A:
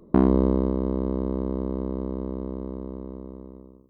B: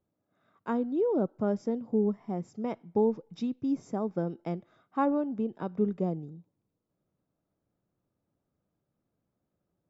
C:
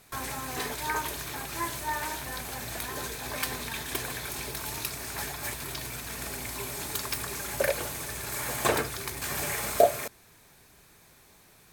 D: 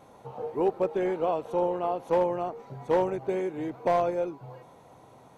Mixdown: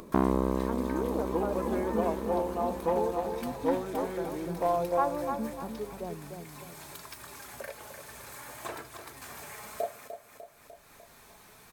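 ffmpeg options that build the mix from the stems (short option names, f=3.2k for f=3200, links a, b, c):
-filter_complex "[0:a]tiltshelf=f=970:g=-4.5,volume=-4.5dB[a];[1:a]acrossover=split=400[b][c];[b]aeval=exprs='val(0)*(1-1/2+1/2*cos(2*PI*1.1*n/s))':c=same[d];[c]aeval=exprs='val(0)*(1-1/2-1/2*cos(2*PI*1.1*n/s))':c=same[e];[d][e]amix=inputs=2:normalize=0,volume=-3dB,asplit=2[f][g];[g]volume=-6.5dB[h];[2:a]flanger=delay=3:depth=1.7:regen=65:speed=0.57:shape=sinusoidal,volume=-12dB,asplit=2[i][j];[j]volume=-10.5dB[k];[3:a]aecho=1:1:6:0.65,aeval=exprs='val(0)+0.00501*(sin(2*PI*50*n/s)+sin(2*PI*2*50*n/s)/2+sin(2*PI*3*50*n/s)/3+sin(2*PI*4*50*n/s)/4+sin(2*PI*5*50*n/s)/5)':c=same,adelay=750,volume=-9.5dB,asplit=2[l][m];[m]volume=-6.5dB[n];[h][k][n]amix=inputs=3:normalize=0,aecho=0:1:299|598|897|1196|1495:1|0.34|0.116|0.0393|0.0134[o];[a][f][i][l][o]amix=inputs=5:normalize=0,equalizer=f=1k:t=o:w=1.4:g=5.5,acompressor=mode=upward:threshold=-39dB:ratio=2.5"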